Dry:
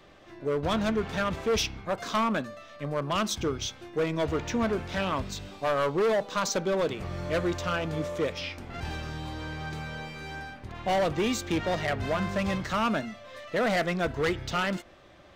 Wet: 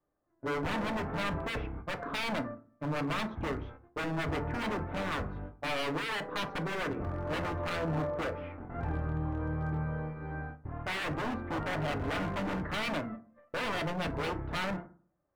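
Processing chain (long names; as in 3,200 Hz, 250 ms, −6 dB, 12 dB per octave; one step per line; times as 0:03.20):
noise gate −40 dBFS, range −28 dB
low-pass filter 1,500 Hz 24 dB per octave
wave folding −28.5 dBFS
feedback delay network reverb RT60 0.42 s, low-frequency decay 1.3×, high-frequency decay 0.45×, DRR 7 dB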